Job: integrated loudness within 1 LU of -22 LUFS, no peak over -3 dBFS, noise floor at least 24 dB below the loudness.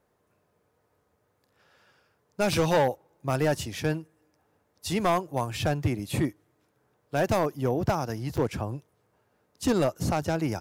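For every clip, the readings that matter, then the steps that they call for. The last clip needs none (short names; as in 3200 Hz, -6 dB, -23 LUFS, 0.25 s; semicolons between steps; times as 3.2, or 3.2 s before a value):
clipped 1.0%; flat tops at -17.5 dBFS; dropouts 1; longest dropout 6.5 ms; loudness -28.0 LUFS; peak -17.5 dBFS; loudness target -22.0 LUFS
-> clip repair -17.5 dBFS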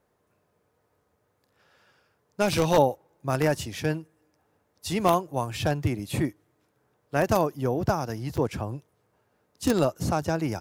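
clipped 0.0%; dropouts 1; longest dropout 6.5 ms
-> interpolate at 8.37, 6.5 ms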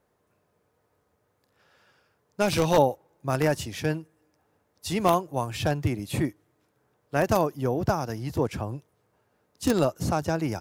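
dropouts 0; loudness -27.0 LUFS; peak -8.5 dBFS; loudness target -22.0 LUFS
-> gain +5 dB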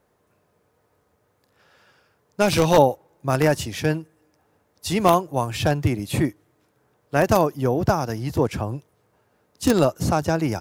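loudness -22.0 LUFS; peak -3.5 dBFS; noise floor -67 dBFS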